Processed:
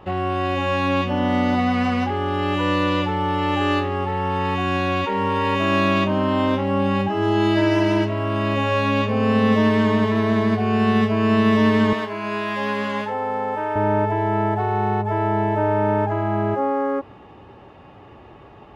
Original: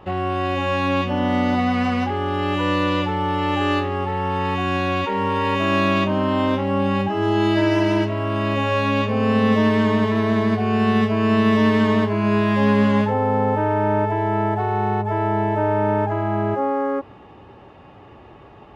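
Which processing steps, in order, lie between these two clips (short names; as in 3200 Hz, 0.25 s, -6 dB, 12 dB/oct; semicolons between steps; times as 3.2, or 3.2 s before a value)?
11.93–13.76 HPF 780 Hz 6 dB/oct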